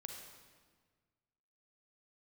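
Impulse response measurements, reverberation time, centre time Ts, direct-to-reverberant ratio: 1.5 s, 54 ms, 2.0 dB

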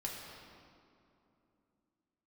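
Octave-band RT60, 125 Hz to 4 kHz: 3.2, 3.9, 3.0, 2.7, 1.9, 1.6 s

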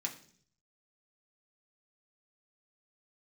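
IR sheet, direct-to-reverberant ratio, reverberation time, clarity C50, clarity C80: -0.5 dB, 0.55 s, 11.5 dB, 15.0 dB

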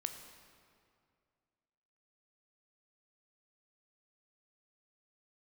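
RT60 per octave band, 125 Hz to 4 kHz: 2.6, 2.4, 2.3, 2.2, 1.9, 1.6 s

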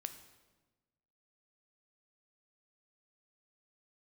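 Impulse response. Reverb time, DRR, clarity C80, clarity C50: 1.2 s, 8.5 dB, 12.5 dB, 11.0 dB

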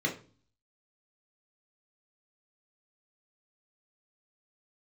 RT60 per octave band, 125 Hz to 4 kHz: 0.70, 0.60, 0.40, 0.35, 0.35, 0.35 s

